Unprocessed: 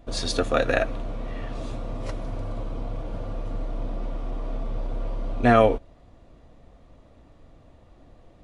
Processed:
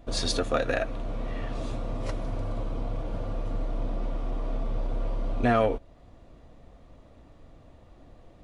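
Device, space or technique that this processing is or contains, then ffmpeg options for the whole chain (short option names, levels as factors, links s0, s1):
soft clipper into limiter: -af "asoftclip=type=tanh:threshold=0.447,alimiter=limit=0.2:level=0:latency=1:release=409"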